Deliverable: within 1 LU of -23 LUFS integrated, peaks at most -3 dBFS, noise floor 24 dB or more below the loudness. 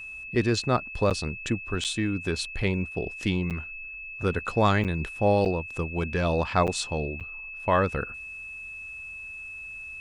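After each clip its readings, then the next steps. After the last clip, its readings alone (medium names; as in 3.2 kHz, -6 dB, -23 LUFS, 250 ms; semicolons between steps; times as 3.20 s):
dropouts 7; longest dropout 7.9 ms; steady tone 2.6 kHz; tone level -37 dBFS; loudness -28.0 LUFS; peak level -8.5 dBFS; loudness target -23.0 LUFS
-> interpolate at 1.10/1.84/3.50/4.84/5.45/6.67/7.20 s, 7.9 ms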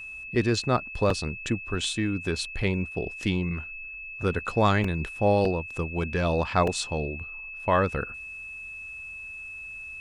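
dropouts 0; steady tone 2.6 kHz; tone level -37 dBFS
-> band-stop 2.6 kHz, Q 30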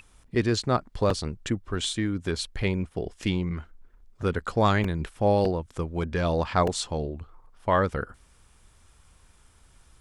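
steady tone not found; loudness -27.5 LUFS; peak level -8.0 dBFS; loudness target -23.0 LUFS
-> trim +4.5 dB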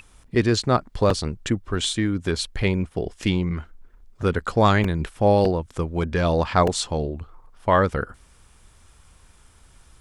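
loudness -23.0 LUFS; peak level -3.5 dBFS; noise floor -54 dBFS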